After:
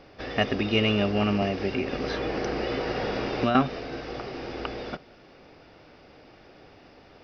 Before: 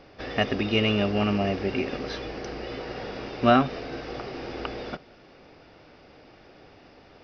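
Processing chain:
0:01.42–0:03.55: multiband upward and downward compressor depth 100%

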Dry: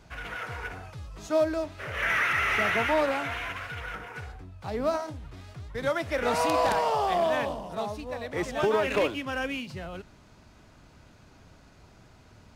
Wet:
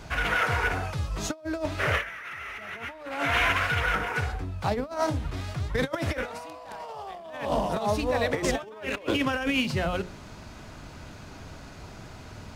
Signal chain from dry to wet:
mains-hum notches 60/120/180/240/300/360/420/480/540 Hz
compressor whose output falls as the input rises −34 dBFS, ratio −0.5
level +6 dB

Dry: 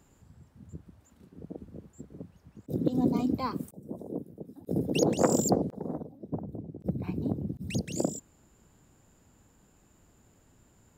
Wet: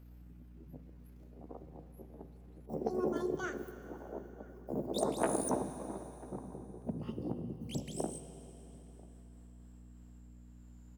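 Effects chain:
pitch glide at a constant tempo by +9 semitones ending unshifted
mains hum 60 Hz, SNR 13 dB
slap from a distant wall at 170 metres, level −23 dB
on a send at −9.5 dB: convolution reverb RT60 3.7 s, pre-delay 3 ms
on the sum: level −7 dB

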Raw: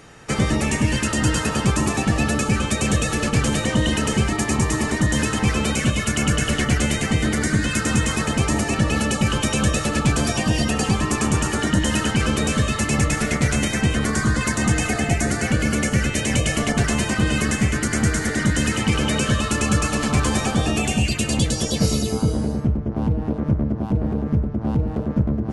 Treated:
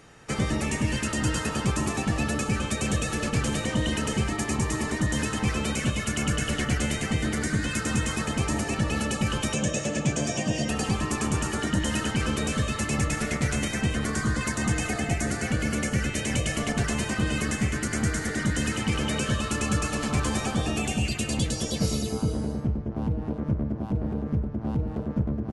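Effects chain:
0:09.55–0:10.69: loudspeaker in its box 120–8,500 Hz, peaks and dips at 150 Hz +4 dB, 590 Hz +6 dB, 880 Hz −4 dB, 1,300 Hz −9 dB, 4,200 Hz −7 dB, 6,600 Hz +6 dB
far-end echo of a speakerphone 260 ms, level −14 dB
level −6.5 dB

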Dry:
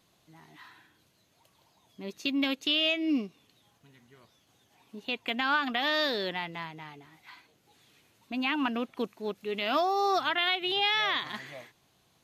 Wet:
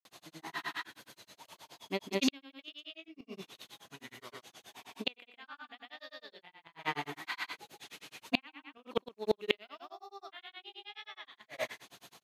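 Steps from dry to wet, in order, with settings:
high-pass filter 510 Hz 6 dB per octave
loudspeakers that aren't time-aligned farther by 31 metres −1 dB, 45 metres −8 dB
granular cloud, grains 9.5 per second, pitch spread up and down by 0 semitones
gate with flip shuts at −28 dBFS, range −34 dB
level +14.5 dB

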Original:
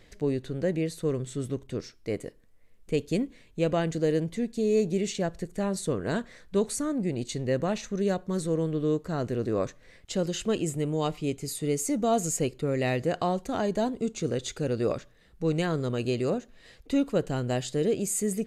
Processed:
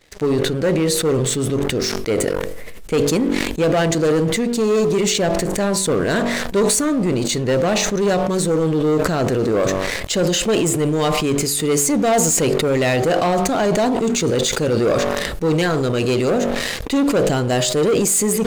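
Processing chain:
low-shelf EQ 250 Hz −7.5 dB
hum removal 47.61 Hz, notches 27
leveller curve on the samples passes 3
level that may fall only so fast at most 22 dB per second
level +4 dB

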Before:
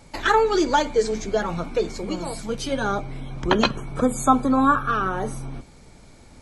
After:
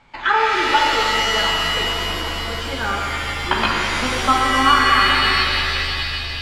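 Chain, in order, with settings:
low-pass filter 5,100 Hz 12 dB per octave
flat-topped bell 1,700 Hz +11 dB 2.4 octaves
reverb with rising layers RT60 3.1 s, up +7 semitones, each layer −2 dB, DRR −2 dB
level −9 dB

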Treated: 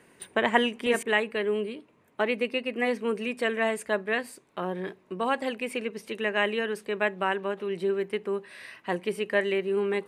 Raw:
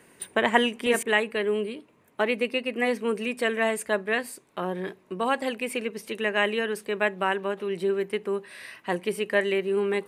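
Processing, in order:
high-shelf EQ 8,800 Hz −9 dB
level −1.5 dB

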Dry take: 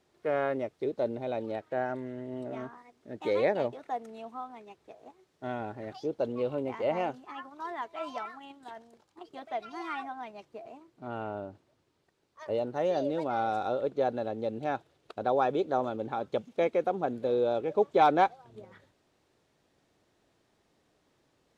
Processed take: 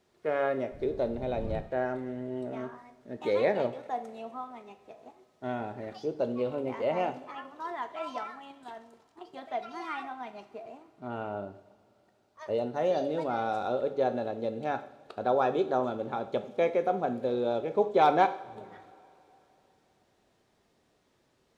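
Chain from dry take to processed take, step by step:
0:00.71–0:01.60: wind on the microphone 120 Hz −38 dBFS
coupled-rooms reverb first 0.55 s, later 3.4 s, from −20 dB, DRR 8 dB

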